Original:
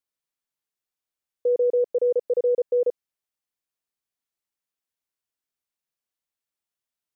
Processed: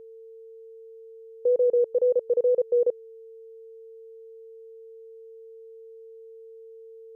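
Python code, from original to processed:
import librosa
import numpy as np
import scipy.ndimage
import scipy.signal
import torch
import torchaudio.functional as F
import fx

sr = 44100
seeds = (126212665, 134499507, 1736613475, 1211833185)

y = fx.wow_flutter(x, sr, seeds[0], rate_hz=2.1, depth_cents=25.0)
y = y + 10.0 ** (-43.0 / 20.0) * np.sin(2.0 * np.pi * 450.0 * np.arange(len(y)) / sr)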